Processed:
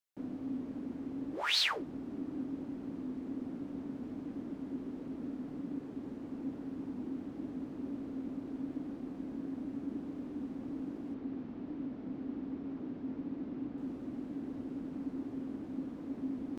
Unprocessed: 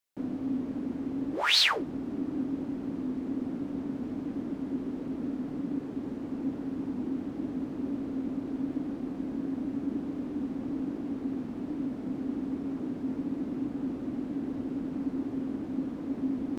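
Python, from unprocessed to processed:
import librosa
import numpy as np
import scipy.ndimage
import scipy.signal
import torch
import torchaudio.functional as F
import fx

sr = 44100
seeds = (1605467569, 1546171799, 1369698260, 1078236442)

y = fx.lowpass(x, sr, hz=4400.0, slope=12, at=(11.14, 13.78))
y = F.gain(torch.from_numpy(y), -7.0).numpy()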